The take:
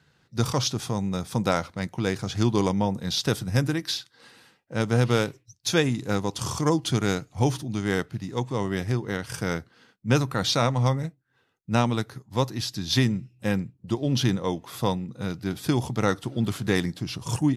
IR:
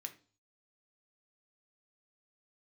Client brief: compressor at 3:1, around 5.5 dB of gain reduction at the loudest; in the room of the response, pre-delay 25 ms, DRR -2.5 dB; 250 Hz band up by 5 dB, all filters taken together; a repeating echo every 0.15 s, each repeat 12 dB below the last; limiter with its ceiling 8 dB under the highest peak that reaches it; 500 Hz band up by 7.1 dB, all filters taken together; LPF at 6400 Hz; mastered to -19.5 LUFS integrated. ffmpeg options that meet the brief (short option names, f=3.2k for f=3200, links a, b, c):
-filter_complex "[0:a]lowpass=6.4k,equalizer=f=250:t=o:g=4.5,equalizer=f=500:t=o:g=7,acompressor=threshold=-19dB:ratio=3,alimiter=limit=-16dB:level=0:latency=1,aecho=1:1:150|300|450:0.251|0.0628|0.0157,asplit=2[a][b];[1:a]atrim=start_sample=2205,adelay=25[c];[b][c]afir=irnorm=-1:irlink=0,volume=6dB[d];[a][d]amix=inputs=2:normalize=0,volume=6dB"